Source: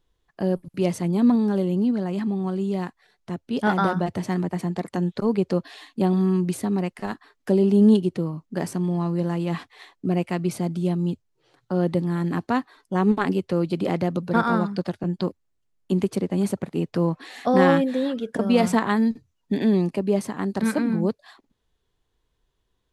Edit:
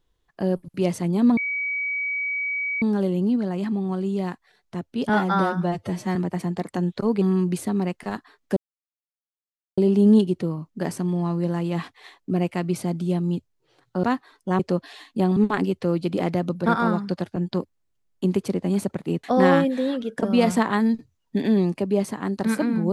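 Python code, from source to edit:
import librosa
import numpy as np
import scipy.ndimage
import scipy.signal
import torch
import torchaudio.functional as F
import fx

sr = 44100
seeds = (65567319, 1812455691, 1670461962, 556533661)

y = fx.edit(x, sr, fx.insert_tone(at_s=1.37, length_s=1.45, hz=2270.0, db=-23.5),
    fx.stretch_span(start_s=3.64, length_s=0.71, factor=1.5),
    fx.move(start_s=5.41, length_s=0.77, to_s=13.04),
    fx.insert_silence(at_s=7.53, length_s=1.21),
    fx.cut(start_s=11.79, length_s=0.69),
    fx.cut(start_s=16.91, length_s=0.49), tone=tone)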